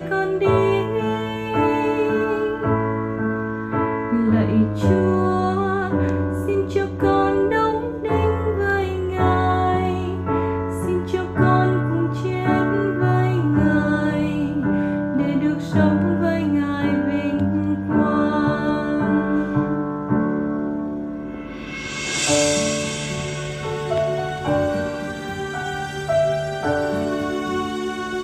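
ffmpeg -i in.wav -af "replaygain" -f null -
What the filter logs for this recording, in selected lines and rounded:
track_gain = +2.3 dB
track_peak = 0.395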